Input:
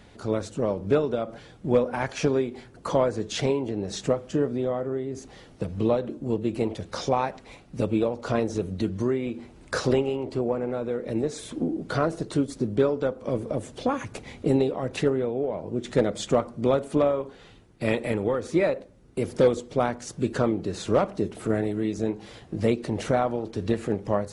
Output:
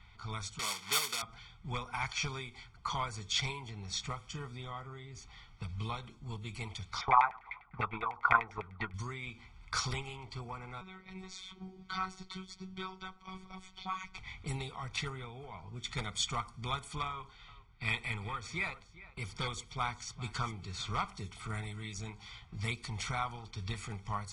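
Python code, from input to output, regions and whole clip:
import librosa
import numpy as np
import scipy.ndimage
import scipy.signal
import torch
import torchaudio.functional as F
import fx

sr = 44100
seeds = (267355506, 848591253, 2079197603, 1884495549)

y = fx.chain(x, sr, fx.block_float(bits=3),
    fx.highpass(hz=270.0, slope=12), at=(0.59, 1.23))
y = fx.chain(y, sr, fx.bass_treble(bass_db=-11, treble_db=-4),
    fx.transient(attack_db=11, sustain_db=0),
    fx.filter_lfo_lowpass(shape='saw_down', hz=10.0, low_hz=760.0, high_hz=2200.0, q=4.4), at=(7.01, 8.94))
y = fx.chain(y, sr, fx.robotise(hz=188.0),
    fx.lowpass(hz=6100.0, slope=12), at=(10.81, 14.18))
y = fx.chain(y, sr, fx.high_shelf(hz=8200.0, db=-7.5),
    fx.echo_single(ms=402, db=-18.0), at=(17.08, 21.07))
y = fx.env_lowpass(y, sr, base_hz=2600.0, full_db=-19.0)
y = fx.tone_stack(y, sr, knobs='10-0-10')
y = y + 0.97 * np.pad(y, (int(0.9 * sr / 1000.0), 0))[:len(y)]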